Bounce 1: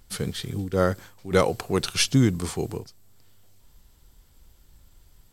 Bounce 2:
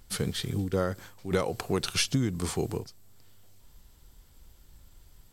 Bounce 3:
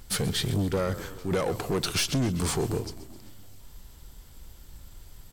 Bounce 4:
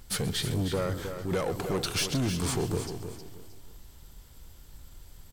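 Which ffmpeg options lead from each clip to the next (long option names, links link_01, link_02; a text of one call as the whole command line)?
ffmpeg -i in.wav -af "acompressor=threshold=-23dB:ratio=6" out.wav
ffmpeg -i in.wav -filter_complex "[0:a]asplit=2[link_01][link_02];[link_02]alimiter=limit=-20dB:level=0:latency=1:release=91,volume=2.5dB[link_03];[link_01][link_03]amix=inputs=2:normalize=0,asplit=7[link_04][link_05][link_06][link_07][link_08][link_09][link_10];[link_05]adelay=130,afreqshift=-33,volume=-17.5dB[link_11];[link_06]adelay=260,afreqshift=-66,volume=-21.5dB[link_12];[link_07]adelay=390,afreqshift=-99,volume=-25.5dB[link_13];[link_08]adelay=520,afreqshift=-132,volume=-29.5dB[link_14];[link_09]adelay=650,afreqshift=-165,volume=-33.6dB[link_15];[link_10]adelay=780,afreqshift=-198,volume=-37.6dB[link_16];[link_04][link_11][link_12][link_13][link_14][link_15][link_16]amix=inputs=7:normalize=0,asoftclip=type=tanh:threshold=-21dB" out.wav
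ffmpeg -i in.wav -af "aecho=1:1:313|626|939:0.355|0.0993|0.0278,volume=-2.5dB" out.wav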